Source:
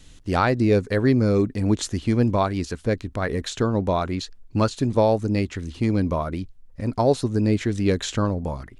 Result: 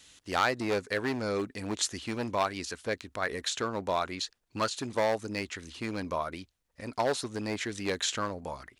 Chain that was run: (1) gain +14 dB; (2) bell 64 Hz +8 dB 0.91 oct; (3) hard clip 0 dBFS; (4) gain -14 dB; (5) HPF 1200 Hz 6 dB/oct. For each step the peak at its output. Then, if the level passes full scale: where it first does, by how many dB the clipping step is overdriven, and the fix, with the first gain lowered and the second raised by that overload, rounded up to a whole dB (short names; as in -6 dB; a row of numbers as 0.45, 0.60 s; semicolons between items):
+7.5, +7.0, 0.0, -14.0, -11.0 dBFS; step 1, 7.0 dB; step 1 +7 dB, step 4 -7 dB